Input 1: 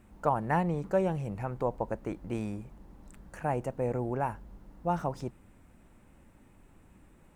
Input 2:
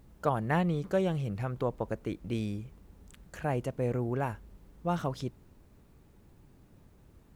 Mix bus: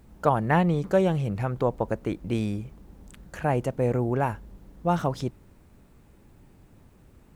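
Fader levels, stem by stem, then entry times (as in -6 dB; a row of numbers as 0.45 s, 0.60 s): -3.0 dB, +3.0 dB; 0.00 s, 0.00 s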